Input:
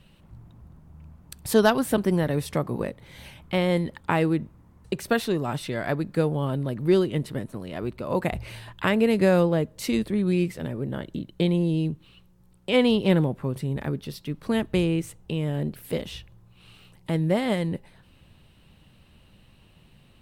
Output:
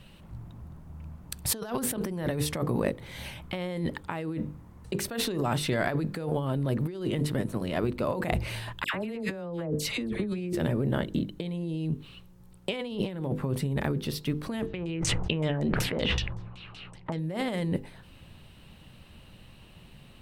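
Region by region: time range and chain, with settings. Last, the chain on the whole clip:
8.84–10.53 s: treble shelf 5.9 kHz -6.5 dB + phase dispersion lows, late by 97 ms, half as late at 1.6 kHz
14.67–17.19 s: LFO low-pass saw down 5.3 Hz 800–7200 Hz + decay stretcher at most 44 dB/s
whole clip: hum notches 50/100/150/200/250/300/350/400/450/500 Hz; compressor with a negative ratio -30 dBFS, ratio -1

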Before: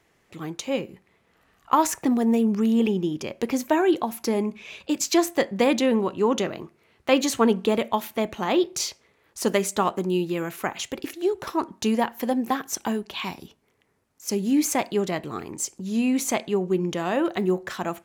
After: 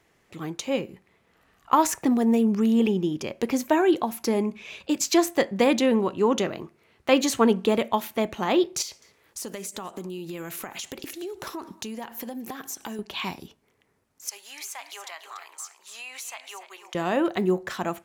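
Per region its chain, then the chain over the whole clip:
8.82–12.99 s: treble shelf 4 kHz +7.5 dB + compression 12:1, threshold -31 dBFS + delay 202 ms -22.5 dB
14.29–16.95 s: high-pass 870 Hz 24 dB/octave + compression 4:1, threshold -35 dBFS + feedback delay 288 ms, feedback 17%, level -10 dB
whole clip: none

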